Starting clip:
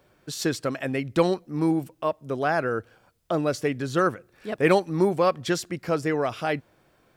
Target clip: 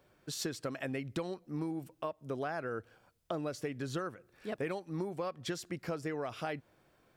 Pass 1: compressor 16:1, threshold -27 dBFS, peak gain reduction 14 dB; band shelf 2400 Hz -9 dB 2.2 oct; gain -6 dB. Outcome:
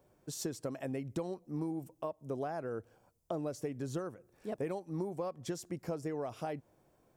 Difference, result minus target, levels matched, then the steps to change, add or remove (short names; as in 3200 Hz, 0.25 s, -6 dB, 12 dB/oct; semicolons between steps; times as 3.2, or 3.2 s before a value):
2000 Hz band -8.0 dB
remove: band shelf 2400 Hz -9 dB 2.2 oct